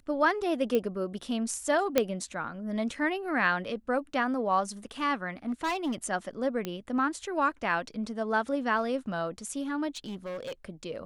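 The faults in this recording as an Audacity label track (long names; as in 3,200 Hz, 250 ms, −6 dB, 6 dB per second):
0.750000	0.750000	click −16 dBFS
1.980000	1.980000	click −8 dBFS
5.480000	5.950000	clipping −26.5 dBFS
6.650000	6.650000	click −18 dBFS
9.960000	10.650000	clipping −33 dBFS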